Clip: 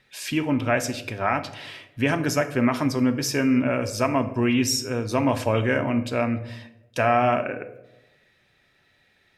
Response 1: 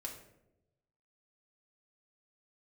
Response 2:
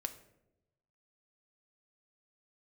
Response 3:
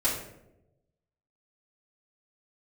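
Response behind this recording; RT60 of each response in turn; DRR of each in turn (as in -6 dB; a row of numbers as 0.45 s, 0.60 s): 2; 0.90 s, 0.90 s, 0.90 s; -1.0 dB, 7.5 dB, -10.5 dB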